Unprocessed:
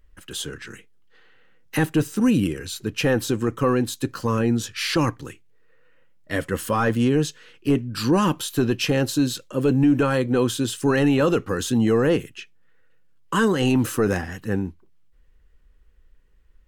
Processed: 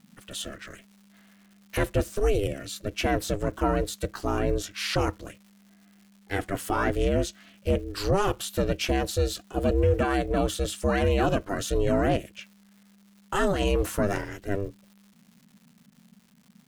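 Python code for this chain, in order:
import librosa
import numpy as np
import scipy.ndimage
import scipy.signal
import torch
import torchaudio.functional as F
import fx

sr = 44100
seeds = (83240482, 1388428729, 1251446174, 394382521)

y = fx.dmg_crackle(x, sr, seeds[0], per_s=440.0, level_db=-44.0)
y = y * np.sin(2.0 * np.pi * 200.0 * np.arange(len(y)) / sr)
y = y * 10.0 ** (-1.5 / 20.0)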